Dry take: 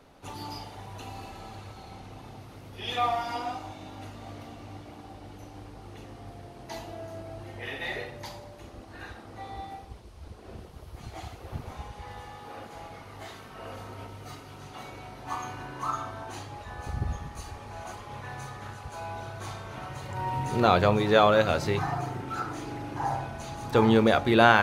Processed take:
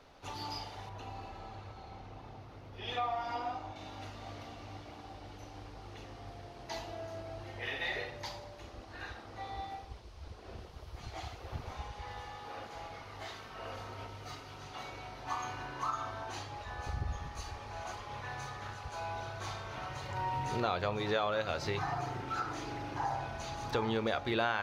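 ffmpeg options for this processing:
ffmpeg -i in.wav -filter_complex "[0:a]asettb=1/sr,asplit=3[link_01][link_02][link_03];[link_01]atrim=end=0.894[link_04];[link_02]atrim=start=0.89:end=3.76,asetpts=PTS-STARTPTS,afade=type=in:duration=0.004:curve=qsin,afade=type=out:start_time=2.866:duration=0.004:curve=qsin,highshelf=frequency=2300:gain=-10.5[link_05];[link_03]atrim=start=3.756[link_06];[link_04][link_05]acrossfade=duration=0.004:curve1=hsin:curve2=qsin[link_07];[link_07][link_06]acrossfade=duration=0.004:curve1=qsin:curve2=hsin,equalizer=frequency=200:width_type=o:width=2:gain=-6.5,acompressor=threshold=-31dB:ratio=3,highshelf=frequency=7000:width_type=q:width=1.5:gain=-7,volume=-1dB" out.wav

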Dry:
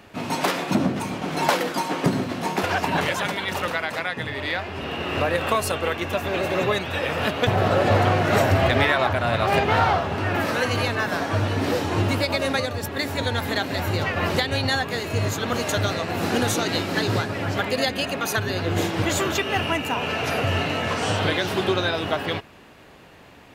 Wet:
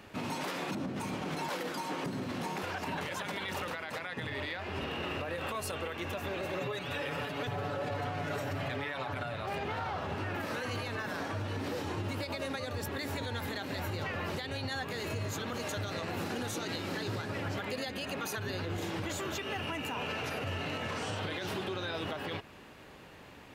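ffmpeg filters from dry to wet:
ffmpeg -i in.wav -filter_complex "[0:a]asettb=1/sr,asplit=3[link_01][link_02][link_03];[link_01]atrim=end=6.604[link_04];[link_02]atrim=start=6.6:end=9.34,asetpts=PTS-STARTPTS,afade=type=in:duration=0.004:curve=qsin,afade=type=out:start_time=2.736:duration=0.004:curve=qsin,aecho=1:1:7:0.98,atrim=end_sample=120834[link_05];[link_03]atrim=start=9.336[link_06];[link_04][link_05]acrossfade=duration=0.004:curve1=hsin:curve2=qsin[link_07];[link_07][link_06]acrossfade=duration=0.004:curve1=qsin:curve2=hsin,bandreject=frequency=690:width=16,acompressor=threshold=-27dB:ratio=6,alimiter=limit=-23.5dB:level=0:latency=1:release=28,volume=-4dB" out.wav

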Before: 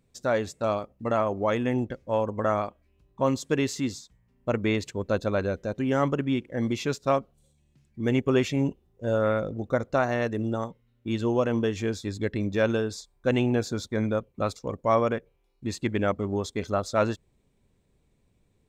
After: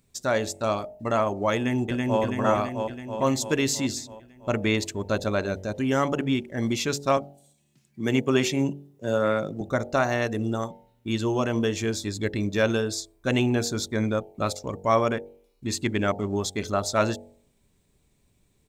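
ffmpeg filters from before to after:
ffmpeg -i in.wav -filter_complex "[0:a]asplit=2[link_01][link_02];[link_02]afade=type=in:start_time=1.55:duration=0.01,afade=type=out:start_time=2.21:duration=0.01,aecho=0:1:330|660|990|1320|1650|1980|2310|2640|2970|3300|3630:0.841395|0.546907|0.355489|0.231068|0.150194|0.0976263|0.0634571|0.0412471|0.0268106|0.0174269|0.0113275[link_03];[link_01][link_03]amix=inputs=2:normalize=0,asettb=1/sr,asplit=3[link_04][link_05][link_06];[link_04]atrim=end=7.174[link_07];[link_05]atrim=start=7.17:end=9.61,asetpts=PTS-STARTPTS,afade=type=in:duration=0.004:curve=qsin,afade=type=out:start_time=2.436:duration=0.004:curve=qsin,highpass=frequency=120:width=0.5412,highpass=frequency=120:width=1.3066[link_08];[link_06]atrim=start=9.606[link_09];[link_07][link_08]acrossfade=duration=0.004:curve1=hsin:curve2=qsin[link_10];[link_10][link_09]acrossfade=duration=0.004:curve1=qsin:curve2=hsin,highshelf=frequency=3900:gain=10,bandreject=frequency=500:width=12,bandreject=frequency=47.3:width_type=h:width=4,bandreject=frequency=94.6:width_type=h:width=4,bandreject=frequency=141.9:width_type=h:width=4,bandreject=frequency=189.2:width_type=h:width=4,bandreject=frequency=236.5:width_type=h:width=4,bandreject=frequency=283.8:width_type=h:width=4,bandreject=frequency=331.1:width_type=h:width=4,bandreject=frequency=378.4:width_type=h:width=4,bandreject=frequency=425.7:width_type=h:width=4,bandreject=frequency=473:width_type=h:width=4,bandreject=frequency=520.3:width_type=h:width=4,bandreject=frequency=567.6:width_type=h:width=4,bandreject=frequency=614.9:width_type=h:width=4,bandreject=frequency=662.2:width_type=h:width=4,bandreject=frequency=709.5:width_type=h:width=4,bandreject=frequency=756.8:width_type=h:width=4,bandreject=frequency=804.1:width_type=h:width=4,bandreject=frequency=851.4:width_type=h:width=4,bandreject=frequency=898.7:width_type=h:width=4,volume=1.5dB" out.wav

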